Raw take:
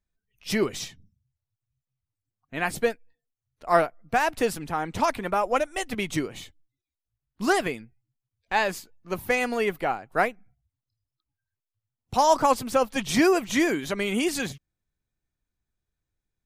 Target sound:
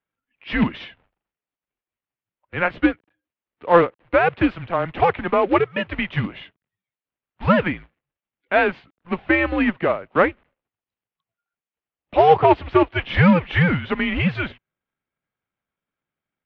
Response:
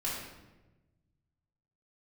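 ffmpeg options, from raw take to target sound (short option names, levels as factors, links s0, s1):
-af "acrusher=bits=3:mode=log:mix=0:aa=0.000001,highpass=f=280:t=q:w=0.5412,highpass=f=280:t=q:w=1.307,lowpass=f=3200:t=q:w=0.5176,lowpass=f=3200:t=q:w=0.7071,lowpass=f=3200:t=q:w=1.932,afreqshift=-170,volume=2.11"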